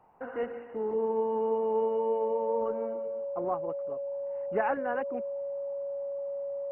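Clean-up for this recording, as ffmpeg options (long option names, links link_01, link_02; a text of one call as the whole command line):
ffmpeg -i in.wav -af "bandreject=frequency=560:width=30" out.wav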